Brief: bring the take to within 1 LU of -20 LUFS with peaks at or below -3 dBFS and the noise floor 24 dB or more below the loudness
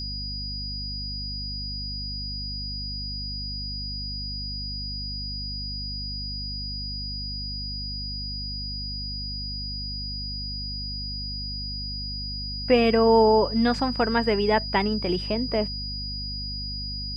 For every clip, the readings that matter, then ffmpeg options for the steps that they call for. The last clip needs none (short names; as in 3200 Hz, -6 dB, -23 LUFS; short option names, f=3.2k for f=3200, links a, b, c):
hum 50 Hz; harmonics up to 250 Hz; hum level -33 dBFS; steady tone 4900 Hz; tone level -32 dBFS; loudness -27.0 LUFS; peak -8.0 dBFS; loudness target -20.0 LUFS
-> -af "bandreject=f=50:t=h:w=4,bandreject=f=100:t=h:w=4,bandreject=f=150:t=h:w=4,bandreject=f=200:t=h:w=4,bandreject=f=250:t=h:w=4"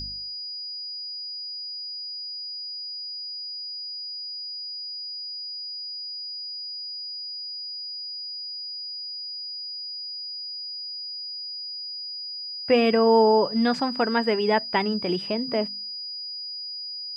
hum none; steady tone 4900 Hz; tone level -32 dBFS
-> -af "bandreject=f=4.9k:w=30"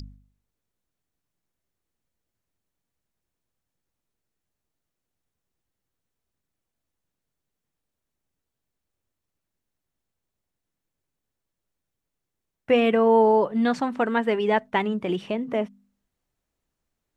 steady tone none; loudness -22.5 LUFS; peak -8.5 dBFS; loudness target -20.0 LUFS
-> -af "volume=2.5dB"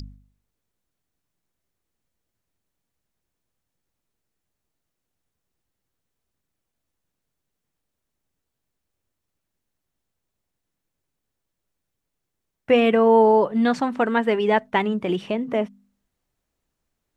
loudness -20.0 LUFS; peak -6.0 dBFS; noise floor -81 dBFS